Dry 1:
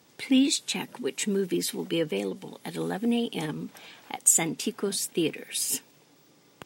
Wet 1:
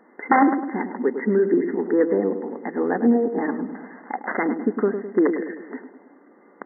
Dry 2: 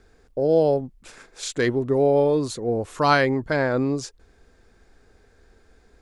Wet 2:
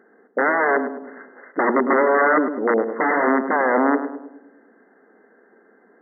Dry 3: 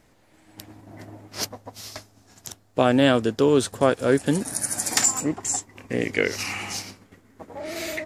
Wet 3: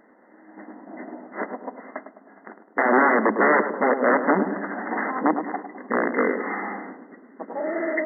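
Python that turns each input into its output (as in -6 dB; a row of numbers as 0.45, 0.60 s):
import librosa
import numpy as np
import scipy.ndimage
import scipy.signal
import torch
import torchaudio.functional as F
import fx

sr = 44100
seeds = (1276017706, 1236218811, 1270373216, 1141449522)

y = (np.mod(10.0 ** (16.5 / 20.0) * x + 1.0, 2.0) - 1.0) / 10.0 ** (16.5 / 20.0)
y = fx.brickwall_bandpass(y, sr, low_hz=190.0, high_hz=2100.0)
y = fx.echo_filtered(y, sr, ms=104, feedback_pct=56, hz=990.0, wet_db=-7.5)
y = y * 10.0 ** (-6 / 20.0) / np.max(np.abs(y))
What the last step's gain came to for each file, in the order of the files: +8.5, +6.0, +6.5 dB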